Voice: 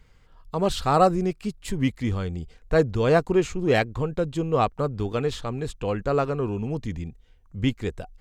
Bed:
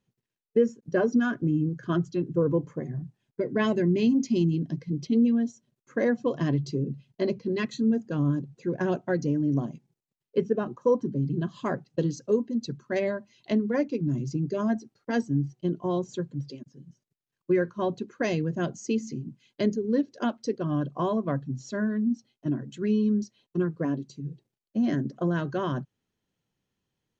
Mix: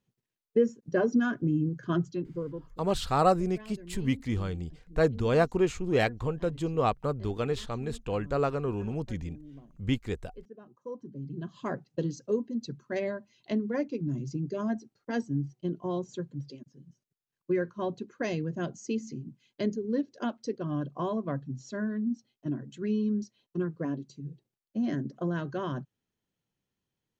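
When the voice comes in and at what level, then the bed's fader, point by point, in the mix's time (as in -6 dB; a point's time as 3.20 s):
2.25 s, -4.5 dB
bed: 2.05 s -2 dB
2.91 s -23 dB
10.57 s -23 dB
11.67 s -4.5 dB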